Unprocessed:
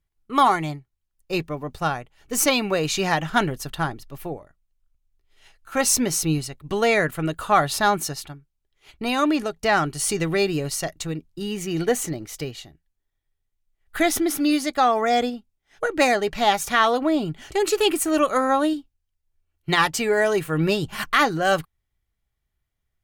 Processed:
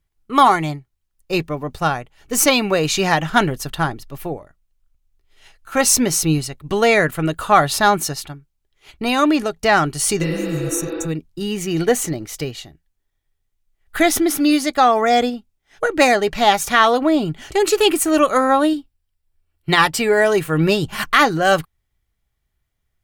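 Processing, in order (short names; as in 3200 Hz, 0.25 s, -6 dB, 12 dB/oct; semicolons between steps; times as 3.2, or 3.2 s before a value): 10.25–11.03 spectral repair 210–5600 Hz both; 18.43–20.32 notch 6400 Hz, Q 7.1; gain +5 dB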